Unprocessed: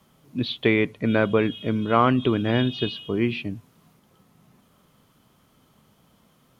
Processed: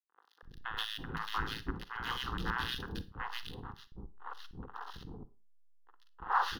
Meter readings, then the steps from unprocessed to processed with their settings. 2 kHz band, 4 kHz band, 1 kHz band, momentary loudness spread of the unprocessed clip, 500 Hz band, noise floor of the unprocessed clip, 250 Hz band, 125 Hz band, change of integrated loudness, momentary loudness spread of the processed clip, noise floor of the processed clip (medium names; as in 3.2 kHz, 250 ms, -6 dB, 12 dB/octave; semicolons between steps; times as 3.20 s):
-9.0 dB, -7.5 dB, -7.5 dB, 11 LU, -26.5 dB, -62 dBFS, -23.0 dB, -17.5 dB, -16.0 dB, 14 LU, -69 dBFS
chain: local Wiener filter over 15 samples; wind noise 250 Hz -24 dBFS; de-hum 66.53 Hz, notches 26; spectral gate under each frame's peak -20 dB weak; hysteresis with a dead band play -31 dBFS; static phaser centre 2.3 kHz, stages 6; three bands offset in time mids, highs, lows 130/330 ms, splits 560/2000 Hz; Schroeder reverb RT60 0.3 s, DRR 14.5 dB; trim +7 dB